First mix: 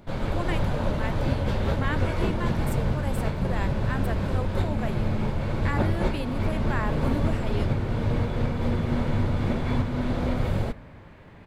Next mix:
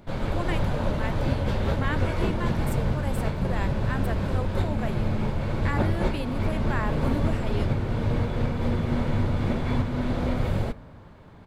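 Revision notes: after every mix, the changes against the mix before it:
second sound: add static phaser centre 980 Hz, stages 4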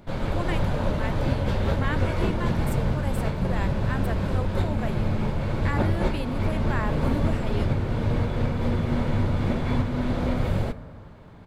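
first sound: send +6.0 dB

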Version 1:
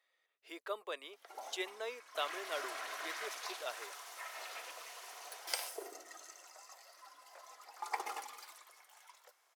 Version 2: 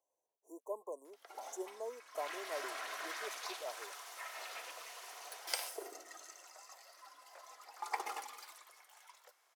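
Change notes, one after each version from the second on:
speech: add brick-wall FIR band-stop 1.1–5.7 kHz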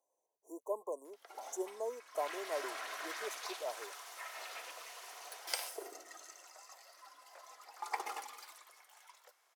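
speech +4.0 dB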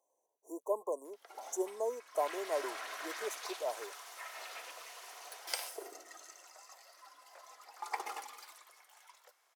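speech +4.0 dB

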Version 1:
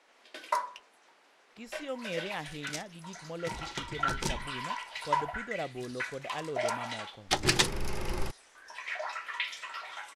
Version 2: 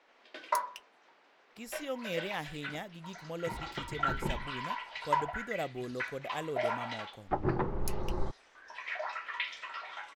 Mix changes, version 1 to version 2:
first sound: add distance through air 190 m; second sound: add low-pass 1.2 kHz 24 dB/octave; master: remove distance through air 59 m

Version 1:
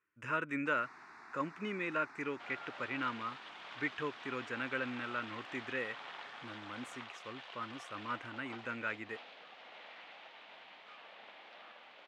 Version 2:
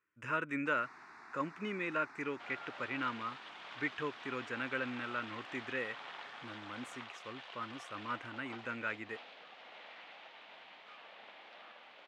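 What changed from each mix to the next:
no change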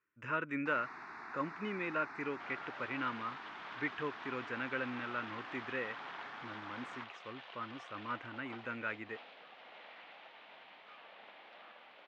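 first sound +7.0 dB; master: add distance through air 130 m

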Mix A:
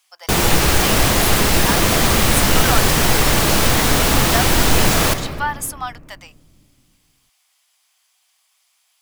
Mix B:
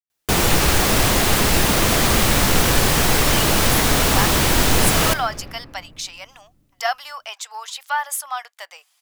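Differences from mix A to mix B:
speech: entry +2.50 s; background: send -7.0 dB

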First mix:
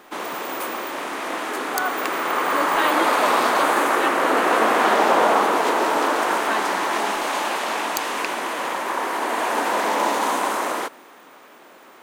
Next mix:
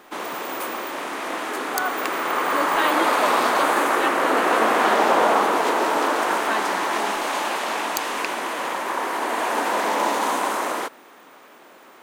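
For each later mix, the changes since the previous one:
background: send -8.5 dB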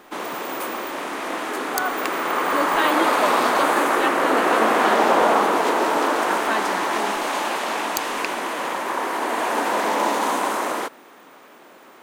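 speech: send on; master: add bass shelf 380 Hz +3.5 dB

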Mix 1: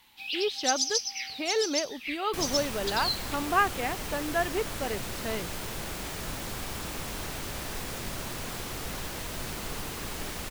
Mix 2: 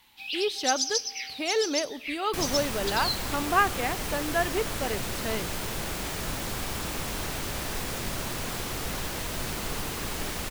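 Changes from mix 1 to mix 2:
speech: remove distance through air 58 m; second sound +3.5 dB; reverb: on, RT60 1.6 s

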